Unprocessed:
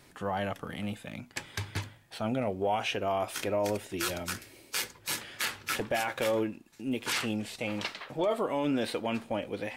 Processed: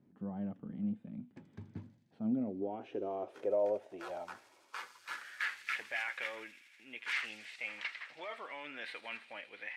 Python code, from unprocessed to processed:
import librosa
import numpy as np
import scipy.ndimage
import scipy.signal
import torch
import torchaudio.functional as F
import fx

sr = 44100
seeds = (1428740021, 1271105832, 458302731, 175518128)

y = fx.echo_wet_highpass(x, sr, ms=81, feedback_pct=83, hz=5100.0, wet_db=-7.0)
y = fx.filter_sweep_bandpass(y, sr, from_hz=210.0, to_hz=2000.0, start_s=2.16, end_s=5.68, q=3.1)
y = y * 10.0 ** (1.5 / 20.0)